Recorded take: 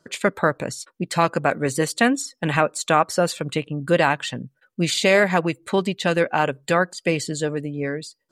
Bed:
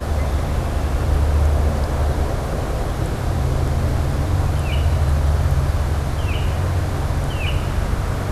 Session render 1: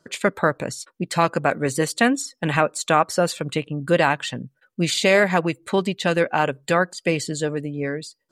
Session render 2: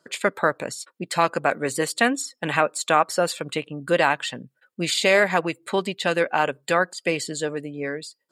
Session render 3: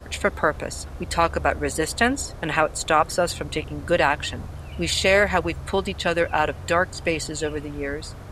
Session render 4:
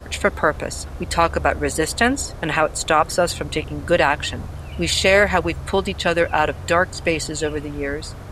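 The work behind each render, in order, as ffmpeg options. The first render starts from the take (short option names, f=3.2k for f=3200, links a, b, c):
-af anull
-af "highpass=f=360:p=1,bandreject=f=6k:w=10"
-filter_complex "[1:a]volume=-16.5dB[a];[0:a][a]amix=inputs=2:normalize=0"
-af "volume=3.5dB,alimiter=limit=-3dB:level=0:latency=1"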